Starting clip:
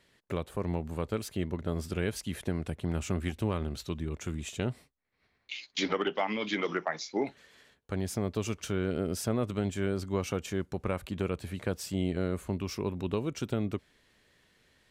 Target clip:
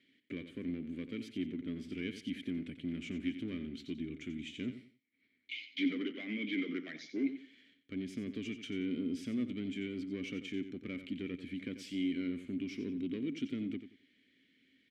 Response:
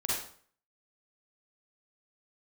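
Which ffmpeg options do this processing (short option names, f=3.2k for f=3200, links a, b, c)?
-filter_complex "[0:a]asettb=1/sr,asplit=3[a][b][c];[a]atrim=end=11.784[d];[b]atrim=start=11.78:end=12.28,asetpts=PTS-STARTPTS,afade=t=in:d=0.004:c=qsin,afade=t=out:st=0.496:d=0.004:c=qsin,tiltshelf=f=740:g=-5[e];[c]atrim=start=12.276[f];[d][e]acrossfade=d=0.004:c1=hsin:c2=qsin[g];[g][f]acrossfade=d=0.004:c1=qsin:c2=hsin,asoftclip=type=tanh:threshold=-27dB,asettb=1/sr,asplit=3[h][i][j];[h]atrim=end=5.684[k];[i]atrim=start=5.68:end=6.78,asetpts=PTS-STARTPTS,afade=t=in:d=0.004:c=qsin,afade=t=out:st=1.096:d=0.004:c=qsin,adynamicsmooth=sensitivity=3:basefreq=3.2k[l];[j]atrim=start=6.776[m];[k][l]acrossfade=d=0.004:c1=hsin:c2=qsin[n];[n][m]acrossfade=d=0.004:c1=qsin:c2=hsin,asplit=3[o][p][q];[o]bandpass=f=270:t=q:w=8,volume=0dB[r];[p]bandpass=f=2.29k:t=q:w=8,volume=-6dB[s];[q]bandpass=f=3.01k:t=q:w=8,volume=-9dB[t];[r][s][t]amix=inputs=3:normalize=0,aecho=1:1:90|180|270:0.282|0.0733|0.0191,volume=8.5dB"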